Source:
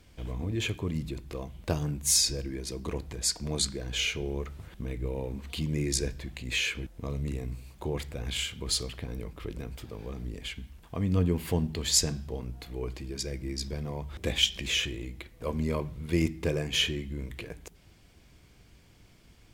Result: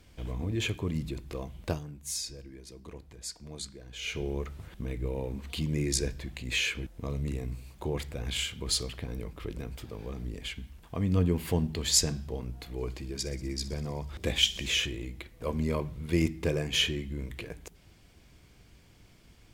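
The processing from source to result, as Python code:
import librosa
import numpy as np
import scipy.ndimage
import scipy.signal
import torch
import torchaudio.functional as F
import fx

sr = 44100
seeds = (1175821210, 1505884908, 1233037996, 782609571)

y = fx.echo_wet_highpass(x, sr, ms=62, feedback_pct=74, hz=4300.0, wet_db=-14.5, at=(12.77, 14.85), fade=0.02)
y = fx.edit(y, sr, fx.fade_down_up(start_s=1.66, length_s=2.52, db=-11.5, fade_s=0.17), tone=tone)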